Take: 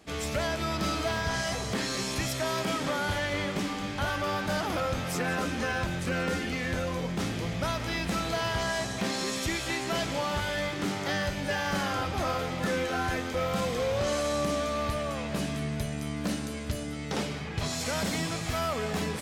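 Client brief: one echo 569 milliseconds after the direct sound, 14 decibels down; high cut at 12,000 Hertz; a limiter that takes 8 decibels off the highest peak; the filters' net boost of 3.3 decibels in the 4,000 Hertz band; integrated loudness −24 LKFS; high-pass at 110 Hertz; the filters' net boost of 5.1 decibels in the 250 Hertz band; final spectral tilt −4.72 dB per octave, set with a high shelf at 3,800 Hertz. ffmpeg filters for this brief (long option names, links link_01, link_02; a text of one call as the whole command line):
ffmpeg -i in.wav -af "highpass=110,lowpass=12000,equalizer=frequency=250:width_type=o:gain=7,highshelf=frequency=3800:gain=-7,equalizer=frequency=4000:width_type=o:gain=8.5,alimiter=limit=-22.5dB:level=0:latency=1,aecho=1:1:569:0.2,volume=7dB" out.wav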